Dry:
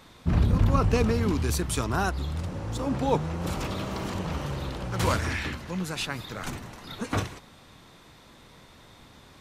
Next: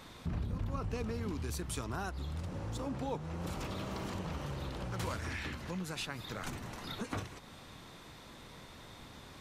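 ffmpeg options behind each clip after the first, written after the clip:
ffmpeg -i in.wav -af "acompressor=threshold=-39dB:ratio=3" out.wav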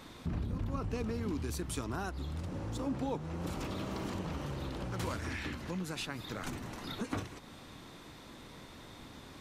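ffmpeg -i in.wav -af "equalizer=frequency=290:width=1.8:gain=5" out.wav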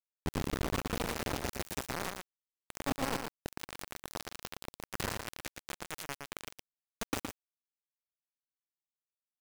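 ffmpeg -i in.wav -filter_complex "[0:a]acrusher=bits=4:mix=0:aa=0.000001,asplit=2[link_01][link_02];[link_02]aecho=0:1:116:0.531[link_03];[link_01][link_03]amix=inputs=2:normalize=0" out.wav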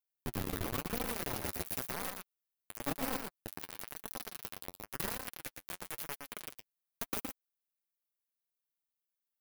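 ffmpeg -i in.wav -af "flanger=delay=3.8:depth=7.3:regen=24:speed=0.96:shape=sinusoidal,aexciter=amount=3.5:drive=3.8:freq=10000" out.wav

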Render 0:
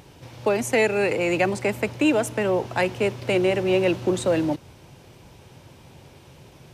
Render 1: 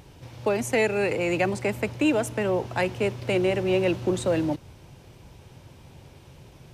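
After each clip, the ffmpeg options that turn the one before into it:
ffmpeg -i in.wav -af "lowshelf=frequency=88:gain=9.5,volume=-3dB" out.wav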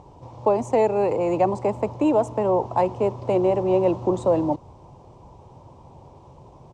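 ffmpeg -i in.wav -af "firequalizer=gain_entry='entry(160,0);entry(1000,11);entry(1500,-13);entry(7500,-7);entry(12000,-29)':delay=0.05:min_phase=1" out.wav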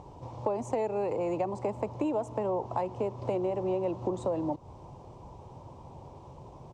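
ffmpeg -i in.wav -af "acompressor=threshold=-28dB:ratio=4,volume=-1dB" out.wav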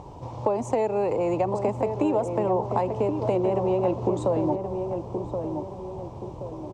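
ffmpeg -i in.wav -filter_complex "[0:a]asplit=2[link_01][link_02];[link_02]adelay=1075,lowpass=frequency=1100:poles=1,volume=-5.5dB,asplit=2[link_03][link_04];[link_04]adelay=1075,lowpass=frequency=1100:poles=1,volume=0.47,asplit=2[link_05][link_06];[link_06]adelay=1075,lowpass=frequency=1100:poles=1,volume=0.47,asplit=2[link_07][link_08];[link_08]adelay=1075,lowpass=frequency=1100:poles=1,volume=0.47,asplit=2[link_09][link_10];[link_10]adelay=1075,lowpass=frequency=1100:poles=1,volume=0.47,asplit=2[link_11][link_12];[link_12]adelay=1075,lowpass=frequency=1100:poles=1,volume=0.47[link_13];[link_01][link_03][link_05][link_07][link_09][link_11][link_13]amix=inputs=7:normalize=0,volume=6dB" out.wav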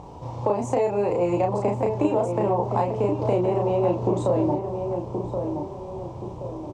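ffmpeg -i in.wav -filter_complex "[0:a]asplit=2[link_01][link_02];[link_02]adelay=34,volume=-3dB[link_03];[link_01][link_03]amix=inputs=2:normalize=0" out.wav

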